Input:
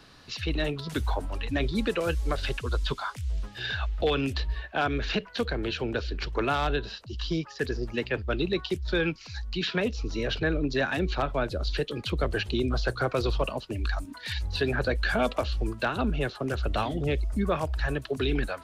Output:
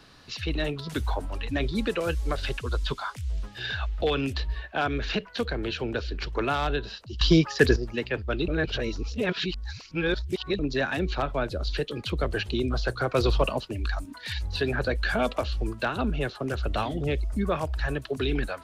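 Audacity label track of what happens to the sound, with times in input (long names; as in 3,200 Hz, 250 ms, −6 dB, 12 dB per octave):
7.210000	7.760000	clip gain +10.5 dB
8.480000	10.590000	reverse
13.150000	13.680000	clip gain +4 dB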